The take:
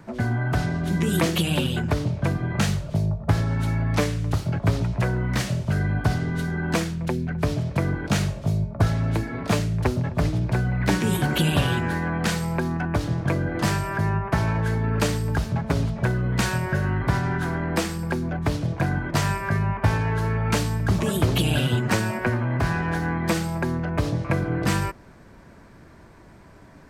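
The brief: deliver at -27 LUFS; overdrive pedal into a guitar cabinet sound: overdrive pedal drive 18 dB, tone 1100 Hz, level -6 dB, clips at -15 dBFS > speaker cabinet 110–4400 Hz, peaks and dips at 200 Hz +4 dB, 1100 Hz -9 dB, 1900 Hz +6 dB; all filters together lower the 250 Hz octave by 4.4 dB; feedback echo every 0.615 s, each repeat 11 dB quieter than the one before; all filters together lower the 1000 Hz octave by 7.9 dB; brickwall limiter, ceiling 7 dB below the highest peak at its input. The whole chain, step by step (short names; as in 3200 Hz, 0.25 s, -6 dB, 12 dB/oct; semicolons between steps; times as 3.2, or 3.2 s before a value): bell 250 Hz -9 dB; bell 1000 Hz -6.5 dB; limiter -17 dBFS; feedback echo 0.615 s, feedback 28%, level -11 dB; overdrive pedal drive 18 dB, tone 1100 Hz, level -6 dB, clips at -15 dBFS; speaker cabinet 110–4400 Hz, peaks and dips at 200 Hz +4 dB, 1100 Hz -9 dB, 1900 Hz +6 dB; gain +1 dB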